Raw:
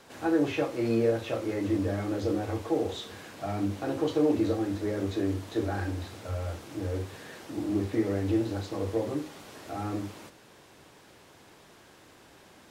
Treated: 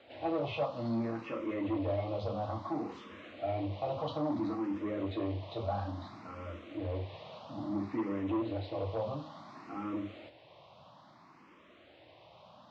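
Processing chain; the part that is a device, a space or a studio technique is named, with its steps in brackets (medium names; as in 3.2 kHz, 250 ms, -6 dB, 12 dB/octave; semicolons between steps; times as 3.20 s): barber-pole phaser into a guitar amplifier (barber-pole phaser +0.59 Hz; saturation -26 dBFS, distortion -15 dB; cabinet simulation 86–4000 Hz, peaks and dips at 420 Hz -9 dB, 620 Hz +7 dB, 1.1 kHz +6 dB, 1.6 kHz -9 dB)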